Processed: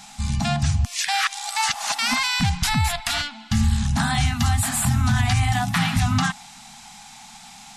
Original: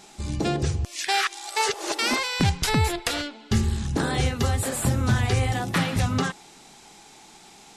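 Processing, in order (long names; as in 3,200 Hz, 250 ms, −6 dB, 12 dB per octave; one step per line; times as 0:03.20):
elliptic band-stop filter 240–720 Hz, stop band 40 dB
brickwall limiter −17.5 dBFS, peak gain reduction 7.5 dB
level +6.5 dB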